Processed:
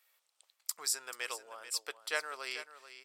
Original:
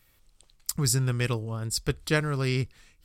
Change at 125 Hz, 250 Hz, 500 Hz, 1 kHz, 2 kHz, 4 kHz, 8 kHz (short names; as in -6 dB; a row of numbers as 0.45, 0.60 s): under -40 dB, -30.5 dB, -14.0 dB, -6.0 dB, -6.0 dB, -6.0 dB, -6.0 dB